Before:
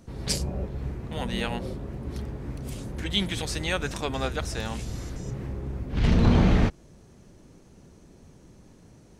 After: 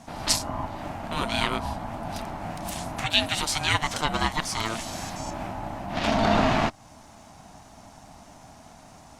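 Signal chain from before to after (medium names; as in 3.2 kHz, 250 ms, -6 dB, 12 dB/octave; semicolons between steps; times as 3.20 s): Bessel high-pass 280 Hz, order 4; in parallel at 0 dB: compression, threshold -38 dBFS, peak gain reduction 16 dB; on the sum: ring modulator 450 Hz; trim +6.5 dB; Opus 64 kbps 48 kHz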